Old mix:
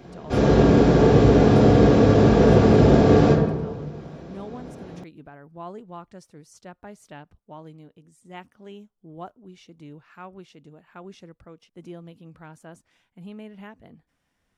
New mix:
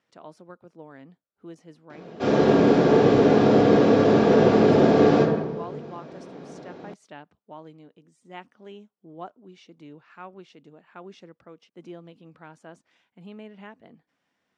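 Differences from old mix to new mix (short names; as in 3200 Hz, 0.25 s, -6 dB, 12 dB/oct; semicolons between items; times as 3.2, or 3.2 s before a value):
background: entry +1.90 s; master: add BPF 210–5700 Hz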